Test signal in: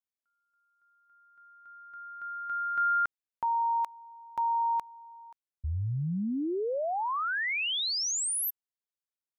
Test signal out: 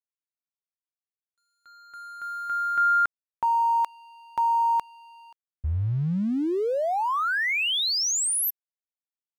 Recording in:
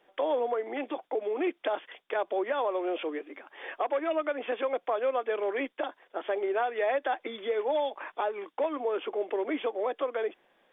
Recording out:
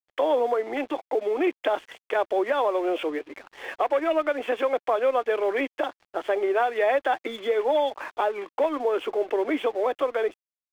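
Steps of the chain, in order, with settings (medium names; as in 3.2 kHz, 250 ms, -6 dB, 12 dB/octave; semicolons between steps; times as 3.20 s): crossover distortion -54 dBFS; trim +6 dB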